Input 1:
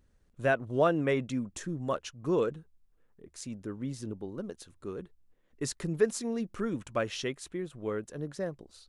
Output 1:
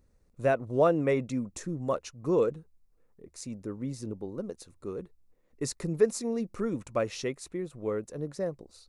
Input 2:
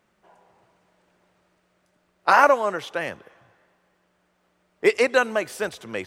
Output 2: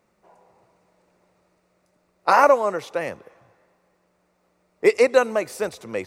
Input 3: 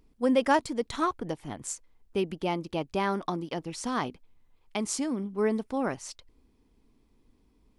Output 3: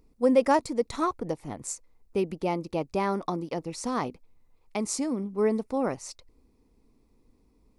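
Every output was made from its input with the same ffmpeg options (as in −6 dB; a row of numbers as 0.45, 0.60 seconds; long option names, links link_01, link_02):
-af "equalizer=frequency=500:width_type=o:width=0.33:gain=4,equalizer=frequency=1600:width_type=o:width=0.33:gain=-7,equalizer=frequency=3150:width_type=o:width=0.33:gain=-10,volume=1dB"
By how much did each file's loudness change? +2.0, +1.0, +1.5 LU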